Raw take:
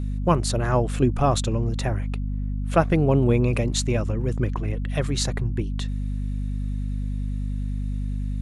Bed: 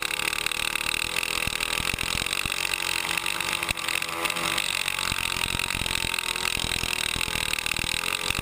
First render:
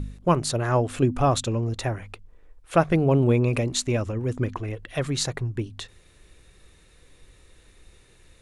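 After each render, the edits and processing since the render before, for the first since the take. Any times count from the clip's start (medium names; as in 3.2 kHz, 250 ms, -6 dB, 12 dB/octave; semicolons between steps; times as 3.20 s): de-hum 50 Hz, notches 5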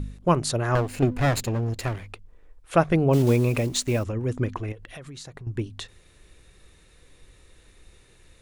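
0.75–2.10 s: comb filter that takes the minimum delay 0.43 ms; 3.13–4.05 s: block-companded coder 5-bit; 4.72–5.47 s: compression 12:1, threshold -37 dBFS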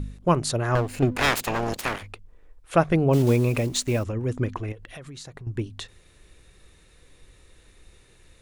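1.15–2.01 s: spectral peaks clipped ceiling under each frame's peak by 26 dB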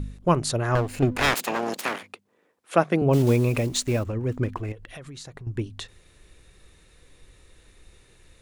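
1.34–3.02 s: high-pass 180 Hz 24 dB/octave; 3.88–4.72 s: median filter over 9 samples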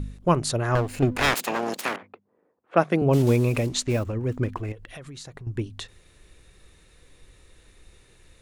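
1.96–3.91 s: level-controlled noise filter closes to 940 Hz, open at -20 dBFS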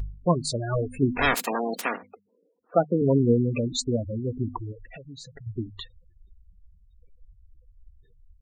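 spectral gate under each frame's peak -10 dB strong; comb 4.2 ms, depth 33%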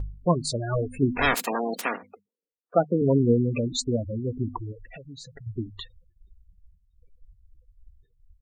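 expander -49 dBFS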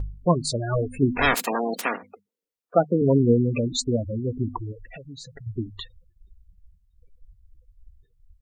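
trim +2 dB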